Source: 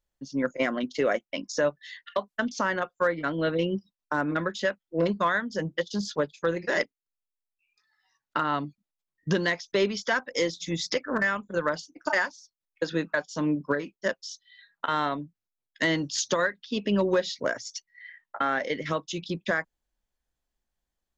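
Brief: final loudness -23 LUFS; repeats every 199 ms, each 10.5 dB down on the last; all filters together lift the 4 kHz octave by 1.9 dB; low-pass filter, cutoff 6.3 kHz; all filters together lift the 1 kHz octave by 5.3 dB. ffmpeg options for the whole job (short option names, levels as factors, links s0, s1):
-af "lowpass=6300,equalizer=f=1000:t=o:g=6.5,equalizer=f=4000:t=o:g=3,aecho=1:1:199|398|597:0.299|0.0896|0.0269,volume=1.41"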